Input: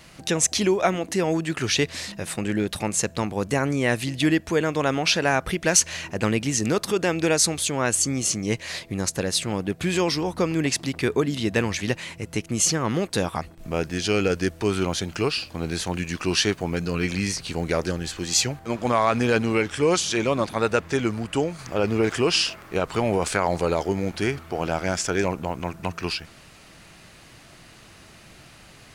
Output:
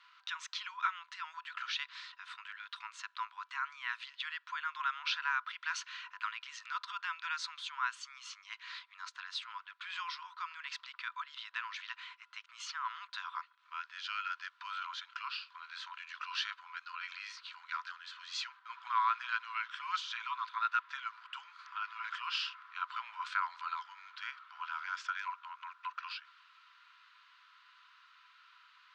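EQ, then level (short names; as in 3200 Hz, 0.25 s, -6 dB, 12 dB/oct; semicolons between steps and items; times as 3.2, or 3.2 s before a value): rippled Chebyshev high-pass 970 Hz, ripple 9 dB; tape spacing loss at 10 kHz 40 dB; +3.5 dB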